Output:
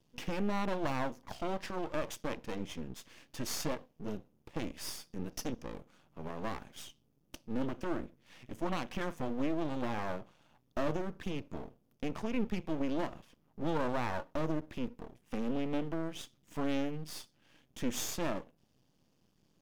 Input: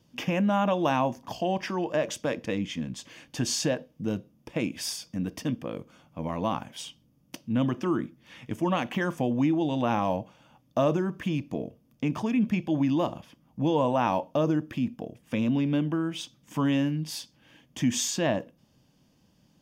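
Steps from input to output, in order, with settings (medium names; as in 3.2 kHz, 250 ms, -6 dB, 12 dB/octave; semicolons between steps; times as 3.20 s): 5.32–5.72 s: peaking EQ 5.9 kHz +13.5 dB 0.68 oct; half-wave rectifier; trim -4.5 dB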